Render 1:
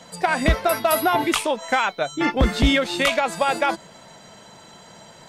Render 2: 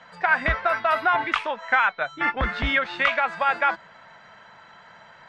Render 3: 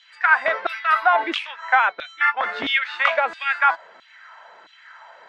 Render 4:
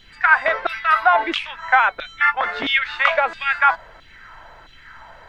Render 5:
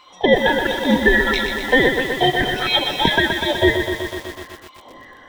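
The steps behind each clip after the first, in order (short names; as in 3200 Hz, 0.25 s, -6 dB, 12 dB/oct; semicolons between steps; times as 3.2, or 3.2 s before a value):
EQ curve 100 Hz 0 dB, 350 Hz -5 dB, 1600 Hz +14 dB, 5700 Hz -8 dB, 11000 Hz -28 dB; gain -8.5 dB
LFO high-pass saw down 1.5 Hz 300–3600 Hz
added noise brown -52 dBFS; gain +2 dB
band-swap scrambler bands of 1000 Hz; lo-fi delay 0.124 s, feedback 80%, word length 6-bit, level -6.5 dB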